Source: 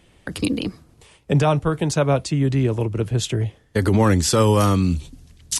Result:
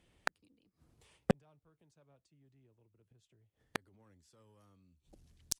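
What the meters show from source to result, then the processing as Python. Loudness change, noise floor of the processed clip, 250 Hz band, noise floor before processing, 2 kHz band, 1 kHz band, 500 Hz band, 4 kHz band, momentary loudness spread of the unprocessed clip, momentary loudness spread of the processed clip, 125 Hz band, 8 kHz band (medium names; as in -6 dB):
-19.5 dB, -83 dBFS, -24.5 dB, -56 dBFS, -15.0 dB, -23.5 dB, -24.0 dB, -21.5 dB, 9 LU, 9 LU, -30.0 dB, -20.5 dB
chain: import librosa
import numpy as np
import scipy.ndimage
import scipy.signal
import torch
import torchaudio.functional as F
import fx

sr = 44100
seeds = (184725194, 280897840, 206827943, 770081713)

y = fx.gate_flip(x, sr, shuts_db=-19.0, range_db=-32)
y = fx.cheby_harmonics(y, sr, harmonics=(7,), levels_db=(-16,), full_scale_db=-15.5)
y = F.gain(torch.from_numpy(y), 3.5).numpy()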